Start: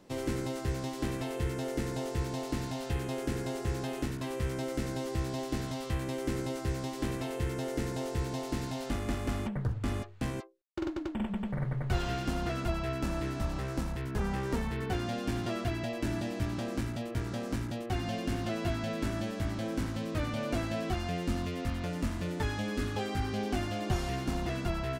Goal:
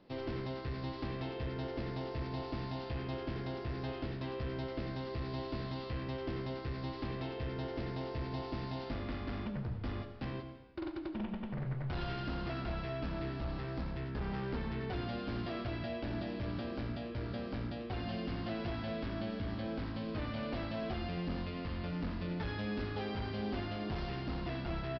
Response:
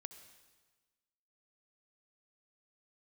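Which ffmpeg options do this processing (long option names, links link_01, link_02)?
-filter_complex "[0:a]aresample=11025,asoftclip=type=hard:threshold=-30dB,aresample=44100,aecho=1:1:86:0.2[link_01];[1:a]atrim=start_sample=2205[link_02];[link_01][link_02]afir=irnorm=-1:irlink=0,volume=1dB"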